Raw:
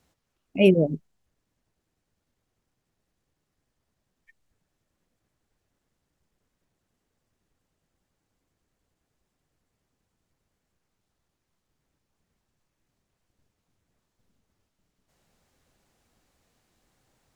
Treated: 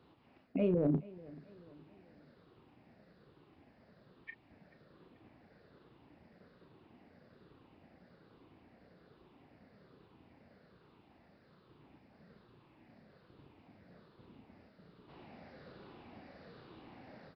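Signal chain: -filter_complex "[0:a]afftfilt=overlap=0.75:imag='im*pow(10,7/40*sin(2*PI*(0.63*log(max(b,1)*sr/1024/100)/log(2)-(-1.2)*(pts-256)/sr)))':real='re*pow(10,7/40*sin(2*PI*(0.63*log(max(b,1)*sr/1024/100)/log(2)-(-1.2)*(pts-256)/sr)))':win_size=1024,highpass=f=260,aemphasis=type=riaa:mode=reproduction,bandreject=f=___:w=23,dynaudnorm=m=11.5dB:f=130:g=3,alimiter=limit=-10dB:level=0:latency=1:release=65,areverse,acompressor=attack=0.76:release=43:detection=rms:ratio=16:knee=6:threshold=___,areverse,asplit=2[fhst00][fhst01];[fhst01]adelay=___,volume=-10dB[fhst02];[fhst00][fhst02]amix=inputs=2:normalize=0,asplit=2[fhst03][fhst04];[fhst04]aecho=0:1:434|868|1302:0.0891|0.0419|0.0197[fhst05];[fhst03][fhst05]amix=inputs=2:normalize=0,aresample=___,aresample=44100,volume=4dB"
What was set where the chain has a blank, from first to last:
3200, -30dB, 34, 11025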